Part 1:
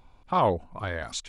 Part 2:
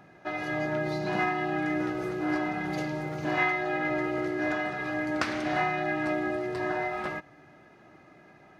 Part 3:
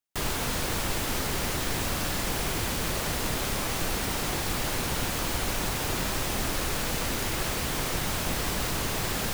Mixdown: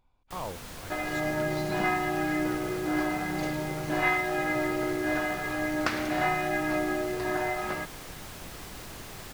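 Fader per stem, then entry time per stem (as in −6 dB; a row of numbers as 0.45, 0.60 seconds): −14.5, +0.5, −13.5 decibels; 0.00, 0.65, 0.15 seconds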